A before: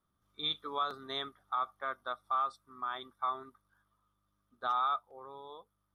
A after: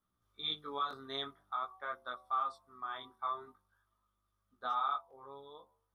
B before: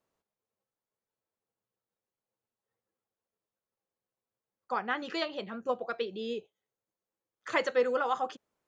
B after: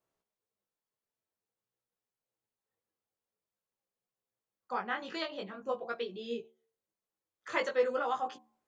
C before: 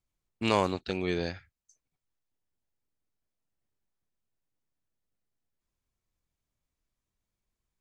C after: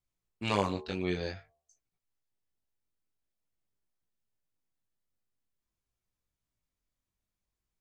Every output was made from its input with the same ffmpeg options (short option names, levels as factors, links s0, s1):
-af "bandreject=f=75.51:t=h:w=4,bandreject=f=151.02:t=h:w=4,bandreject=f=226.53:t=h:w=4,bandreject=f=302.04:t=h:w=4,bandreject=f=377.55:t=h:w=4,bandreject=f=453.06:t=h:w=4,bandreject=f=528.57:t=h:w=4,bandreject=f=604.08:t=h:w=4,bandreject=f=679.59:t=h:w=4,bandreject=f=755.1:t=h:w=4,bandreject=f=830.61:t=h:w=4,bandreject=f=906.12:t=h:w=4,bandreject=f=981.63:t=h:w=4,bandreject=f=1057.14:t=h:w=4,bandreject=f=1132.65:t=h:w=4,flanger=delay=16.5:depth=5.7:speed=0.49"